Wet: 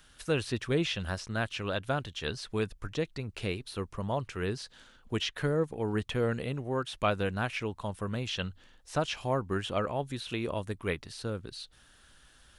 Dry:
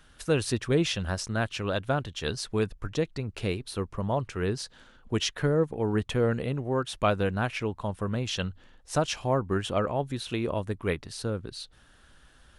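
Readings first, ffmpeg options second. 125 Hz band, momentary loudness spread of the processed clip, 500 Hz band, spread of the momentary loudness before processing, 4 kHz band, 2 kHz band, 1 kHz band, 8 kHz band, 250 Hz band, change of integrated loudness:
-4.5 dB, 7 LU, -4.0 dB, 7 LU, -2.5 dB, -1.5 dB, -3.0 dB, -8.0 dB, -4.5 dB, -4.0 dB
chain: -filter_complex "[0:a]highshelf=f=2300:g=8.5,acrossover=split=3600[s0][s1];[s1]acompressor=threshold=0.00794:ratio=4:attack=1:release=60[s2];[s0][s2]amix=inputs=2:normalize=0,volume=0.596"

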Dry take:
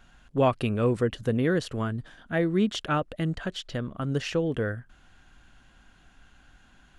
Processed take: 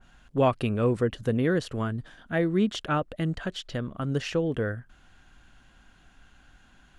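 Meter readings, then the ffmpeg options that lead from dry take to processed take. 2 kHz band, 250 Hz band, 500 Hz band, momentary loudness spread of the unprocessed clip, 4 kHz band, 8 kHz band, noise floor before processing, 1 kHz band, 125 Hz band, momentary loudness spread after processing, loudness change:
-0.5 dB, 0.0 dB, 0.0 dB, 9 LU, -1.0 dB, -1.5 dB, -59 dBFS, 0.0 dB, 0.0 dB, 9 LU, 0.0 dB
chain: -af "adynamicequalizer=threshold=0.0112:dfrequency=1900:dqfactor=0.7:tfrequency=1900:tqfactor=0.7:attack=5:release=100:ratio=0.375:range=1.5:mode=cutabove:tftype=highshelf"

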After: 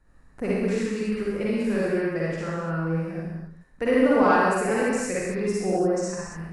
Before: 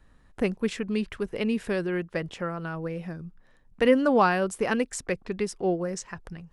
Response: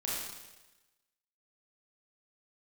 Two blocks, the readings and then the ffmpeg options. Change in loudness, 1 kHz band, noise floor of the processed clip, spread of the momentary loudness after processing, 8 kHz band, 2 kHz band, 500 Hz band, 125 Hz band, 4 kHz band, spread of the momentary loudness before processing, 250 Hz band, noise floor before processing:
+2.5 dB, +3.0 dB, -53 dBFS, 13 LU, +3.0 dB, +2.5 dB, +3.0 dB, +5.0 dB, -2.0 dB, 15 LU, +3.0 dB, -59 dBFS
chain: -filter_complex "[0:a]equalizer=f=3300:t=o:w=0.45:g=-12.5[s0];[1:a]atrim=start_sample=2205,afade=t=out:st=0.27:d=0.01,atrim=end_sample=12348,asetrate=27783,aresample=44100[s1];[s0][s1]afir=irnorm=-1:irlink=0,acontrast=25,volume=0.355"

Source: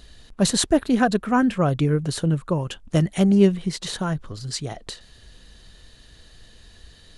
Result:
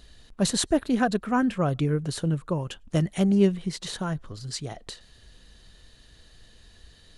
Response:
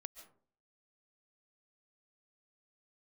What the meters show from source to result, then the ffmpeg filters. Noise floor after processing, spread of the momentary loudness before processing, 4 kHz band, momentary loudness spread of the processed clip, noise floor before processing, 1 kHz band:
-55 dBFS, 13 LU, -4.5 dB, 13 LU, -51 dBFS, -4.5 dB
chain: -filter_complex "[1:a]atrim=start_sample=2205,afade=t=out:st=0.15:d=0.01,atrim=end_sample=7056[s0];[0:a][s0]afir=irnorm=-1:irlink=0,volume=1.19"

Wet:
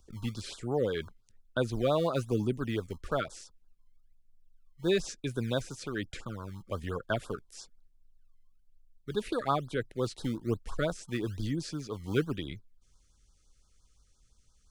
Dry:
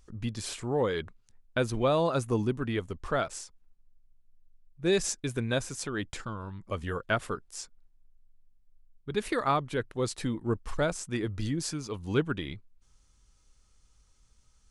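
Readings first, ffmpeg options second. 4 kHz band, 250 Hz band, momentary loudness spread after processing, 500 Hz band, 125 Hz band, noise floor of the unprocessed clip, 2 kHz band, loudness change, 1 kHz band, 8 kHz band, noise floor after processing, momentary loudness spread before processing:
-2.5 dB, -1.5 dB, 12 LU, -2.0 dB, -1.5 dB, -65 dBFS, -4.5 dB, -2.5 dB, -4.0 dB, -9.0 dB, -67 dBFS, 11 LU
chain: -filter_complex "[0:a]acrossover=split=5200[s0][s1];[s1]acompressor=threshold=0.00316:ratio=4:attack=1:release=60[s2];[s0][s2]amix=inputs=2:normalize=0,acrossover=split=170|1900[s3][s4][s5];[s3]acrusher=samples=24:mix=1:aa=0.000001:lfo=1:lforange=38.4:lforate=1.1[s6];[s6][s4][s5]amix=inputs=3:normalize=0,afftfilt=real='re*(1-between(b*sr/1024,780*pow(2400/780,0.5+0.5*sin(2*PI*5.8*pts/sr))/1.41,780*pow(2400/780,0.5+0.5*sin(2*PI*5.8*pts/sr))*1.41))':imag='im*(1-between(b*sr/1024,780*pow(2400/780,0.5+0.5*sin(2*PI*5.8*pts/sr))/1.41,780*pow(2400/780,0.5+0.5*sin(2*PI*5.8*pts/sr))*1.41))':win_size=1024:overlap=0.75,volume=0.841"

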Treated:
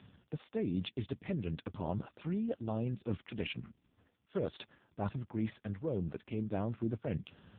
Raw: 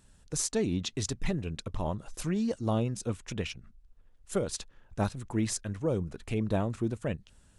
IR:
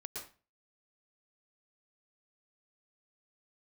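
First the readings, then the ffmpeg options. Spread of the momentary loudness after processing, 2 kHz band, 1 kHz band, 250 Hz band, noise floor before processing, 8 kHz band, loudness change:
6 LU, -6.5 dB, -7.0 dB, -5.0 dB, -61 dBFS, under -40 dB, -6.0 dB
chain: -af "areverse,acompressor=threshold=0.00562:ratio=5,areverse,volume=3.76" -ar 8000 -c:a libopencore_amrnb -b:a 5150

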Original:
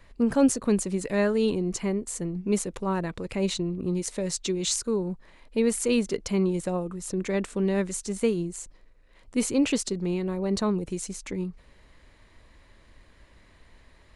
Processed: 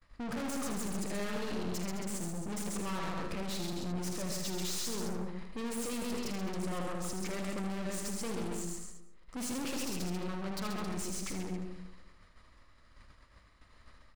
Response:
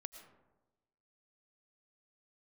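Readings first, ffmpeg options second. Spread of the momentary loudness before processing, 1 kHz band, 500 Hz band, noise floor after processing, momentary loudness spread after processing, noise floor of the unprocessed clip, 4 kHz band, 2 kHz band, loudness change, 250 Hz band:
9 LU, -4.0 dB, -13.5 dB, -61 dBFS, 5 LU, -57 dBFS, -6.0 dB, -6.0 dB, -10.5 dB, -11.0 dB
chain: -filter_complex "[0:a]equalizer=f=400:t=o:w=0.33:g=-6,equalizer=f=1250:t=o:w=0.33:g=11,equalizer=f=5000:t=o:w=0.33:g=7,aecho=1:1:46.65|134.1|271.1:0.282|0.631|0.282,agate=range=0.0224:threshold=0.00631:ratio=3:detection=peak,aeval=exprs='(tanh(70.8*val(0)+0.4)-tanh(0.4))/70.8':c=same,asplit=2[s0][s1];[1:a]atrim=start_sample=2205,adelay=79[s2];[s1][s2]afir=irnorm=-1:irlink=0,volume=0.794[s3];[s0][s3]amix=inputs=2:normalize=0"

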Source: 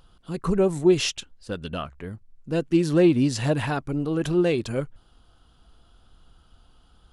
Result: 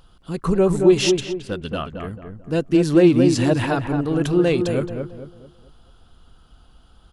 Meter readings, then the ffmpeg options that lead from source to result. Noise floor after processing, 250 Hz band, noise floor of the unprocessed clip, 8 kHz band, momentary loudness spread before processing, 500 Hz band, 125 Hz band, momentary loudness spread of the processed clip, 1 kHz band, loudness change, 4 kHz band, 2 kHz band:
-53 dBFS, +5.0 dB, -58 dBFS, +3.5 dB, 17 LU, +5.0 dB, +4.0 dB, 17 LU, +4.5 dB, +4.5 dB, +3.5 dB, +4.0 dB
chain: -filter_complex "[0:a]asplit=2[s0][s1];[s1]adelay=220,lowpass=f=1400:p=1,volume=0.562,asplit=2[s2][s3];[s3]adelay=220,lowpass=f=1400:p=1,volume=0.39,asplit=2[s4][s5];[s5]adelay=220,lowpass=f=1400:p=1,volume=0.39,asplit=2[s6][s7];[s7]adelay=220,lowpass=f=1400:p=1,volume=0.39,asplit=2[s8][s9];[s9]adelay=220,lowpass=f=1400:p=1,volume=0.39[s10];[s0][s2][s4][s6][s8][s10]amix=inputs=6:normalize=0,volume=1.5"

